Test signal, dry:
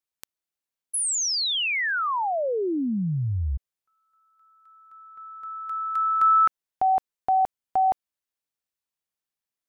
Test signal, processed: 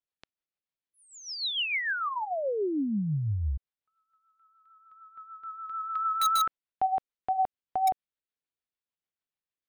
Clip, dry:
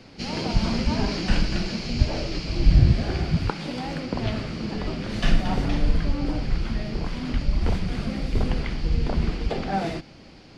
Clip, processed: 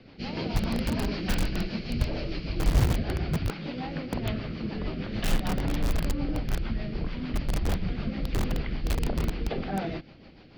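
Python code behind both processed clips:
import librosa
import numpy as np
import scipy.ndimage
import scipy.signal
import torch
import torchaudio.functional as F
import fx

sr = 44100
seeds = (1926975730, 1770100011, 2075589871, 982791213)

p1 = scipy.signal.sosfilt(scipy.signal.butter(4, 4200.0, 'lowpass', fs=sr, output='sos'), x)
p2 = fx.rotary(p1, sr, hz=6.7)
p3 = (np.mod(10.0 ** (17.0 / 20.0) * p2 + 1.0, 2.0) - 1.0) / 10.0 ** (17.0 / 20.0)
p4 = p2 + F.gain(torch.from_numpy(p3), -4.0).numpy()
y = F.gain(torch.from_numpy(p4), -6.0).numpy()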